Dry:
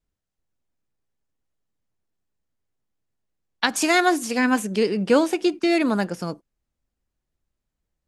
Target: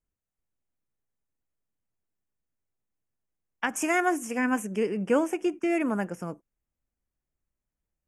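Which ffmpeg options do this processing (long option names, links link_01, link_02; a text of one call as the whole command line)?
ffmpeg -i in.wav -af "asuperstop=centerf=4100:order=4:qfactor=1.3,volume=-6dB" out.wav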